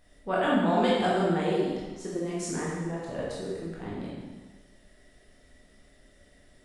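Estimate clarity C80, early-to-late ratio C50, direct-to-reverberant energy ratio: 1.5 dB, −1.5 dB, −6.5 dB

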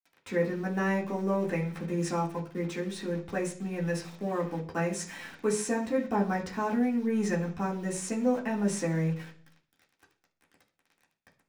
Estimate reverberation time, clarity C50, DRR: 0.45 s, 11.5 dB, −4.0 dB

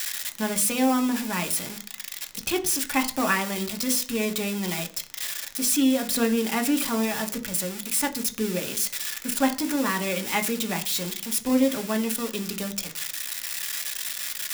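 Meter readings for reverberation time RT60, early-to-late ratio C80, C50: 0.40 s, 20.5 dB, 16.5 dB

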